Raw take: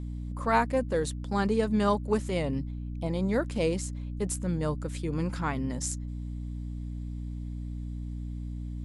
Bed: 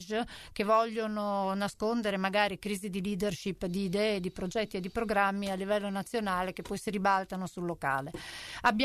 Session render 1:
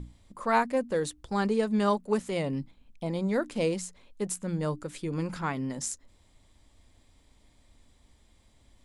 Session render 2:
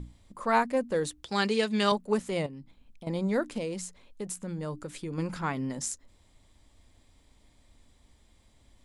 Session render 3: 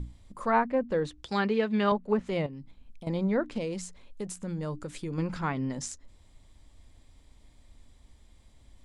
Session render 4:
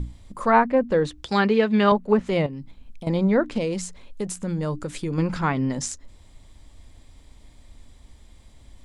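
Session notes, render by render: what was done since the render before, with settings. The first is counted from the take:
hum notches 60/120/180/240/300 Hz
1.23–1.92 s: frequency weighting D; 2.46–3.07 s: compression 2.5:1, threshold -46 dBFS; 3.58–5.18 s: compression 2.5:1, threshold -33 dBFS
low-pass that closes with the level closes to 2 kHz, closed at -23 dBFS; bass shelf 100 Hz +7 dB
trim +7.5 dB

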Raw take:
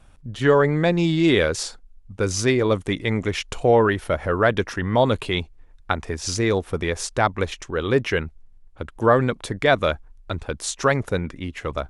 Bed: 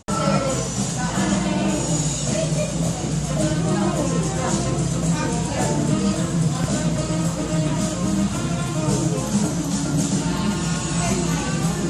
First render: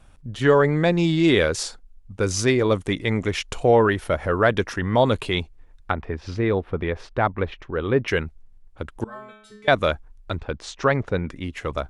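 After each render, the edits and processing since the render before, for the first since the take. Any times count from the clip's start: 5.91–8.08 s: distance through air 360 m; 9.04–9.68 s: inharmonic resonator 210 Hz, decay 0.82 s, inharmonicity 0.002; 10.38–11.30 s: distance through air 150 m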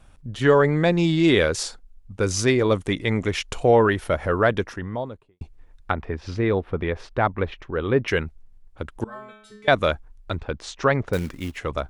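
4.28–5.41 s: studio fade out; 11.13–11.57 s: short-mantissa float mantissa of 2-bit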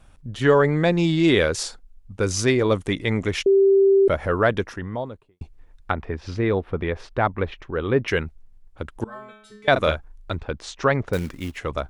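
3.46–4.08 s: bleep 391 Hz -12 dBFS; 9.72–10.32 s: doubling 38 ms -7 dB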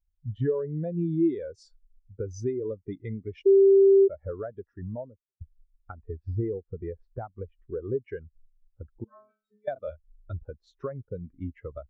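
compression 10:1, threshold -27 dBFS, peak gain reduction 16 dB; spectral contrast expander 2.5:1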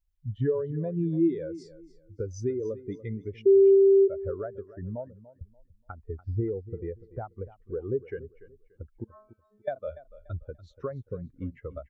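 feedback delay 290 ms, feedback 26%, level -16.5 dB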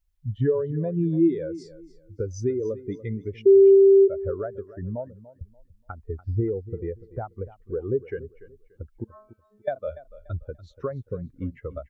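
trim +4 dB

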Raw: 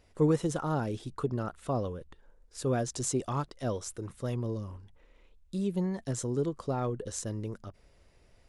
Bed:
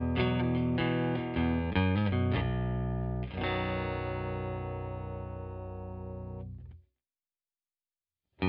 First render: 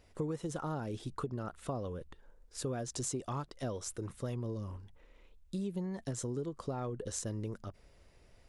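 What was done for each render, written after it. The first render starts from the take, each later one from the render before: compression 6:1, threshold -34 dBFS, peak gain reduction 13 dB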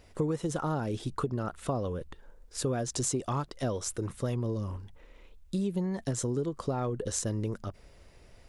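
trim +6.5 dB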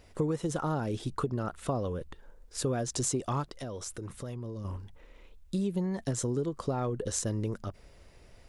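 3.45–4.65 s: compression 3:1, threshold -37 dBFS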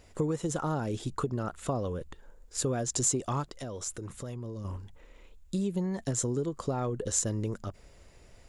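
peaking EQ 7.1 kHz +8.5 dB 0.21 oct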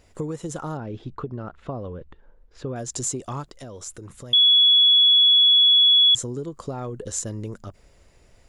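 0.77–2.76 s: distance through air 280 m; 4.33–6.15 s: bleep 3.38 kHz -12 dBFS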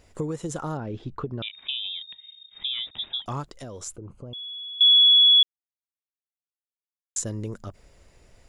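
1.42–3.26 s: frequency inversion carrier 3.7 kHz; 3.96–4.81 s: boxcar filter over 24 samples; 5.43–7.16 s: mute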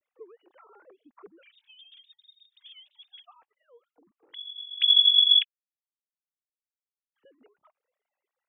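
formants replaced by sine waves; Shepard-style flanger rising 1.7 Hz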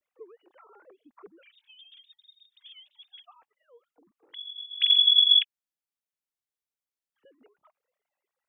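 4.61–5.16 s: flutter echo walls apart 7.7 m, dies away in 0.49 s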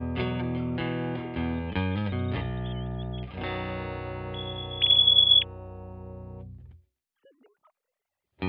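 add bed -0.5 dB

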